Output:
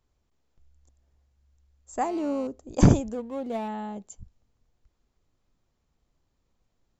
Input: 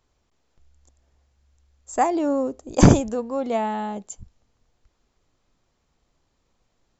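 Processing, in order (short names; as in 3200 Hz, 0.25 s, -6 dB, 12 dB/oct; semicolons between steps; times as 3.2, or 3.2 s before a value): 3.13–3.68 median filter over 25 samples; low shelf 280 Hz +6.5 dB; 2.02–2.47 GSM buzz -38 dBFS; gain -8.5 dB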